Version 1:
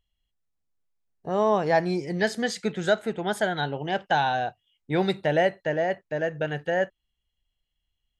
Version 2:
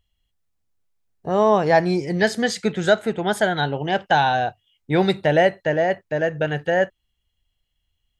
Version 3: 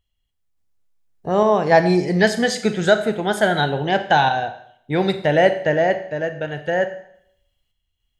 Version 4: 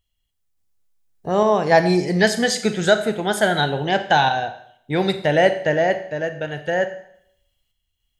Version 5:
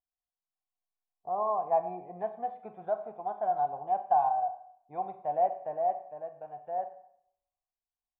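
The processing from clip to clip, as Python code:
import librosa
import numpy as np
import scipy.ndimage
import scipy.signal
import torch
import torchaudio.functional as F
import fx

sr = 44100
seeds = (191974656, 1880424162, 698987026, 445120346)

y1 = fx.peak_eq(x, sr, hz=91.0, db=6.0, octaves=0.57)
y1 = y1 * librosa.db_to_amplitude(5.5)
y2 = fx.tremolo_random(y1, sr, seeds[0], hz=3.5, depth_pct=55)
y2 = fx.rev_schroeder(y2, sr, rt60_s=0.68, comb_ms=30, drr_db=9.5)
y2 = y2 * librosa.db_to_amplitude(3.0)
y3 = fx.high_shelf(y2, sr, hz=4100.0, db=6.5)
y3 = y3 * librosa.db_to_amplitude(-1.0)
y4 = fx.formant_cascade(y3, sr, vowel='a')
y4 = y4 * librosa.db_to_amplitude(-2.0)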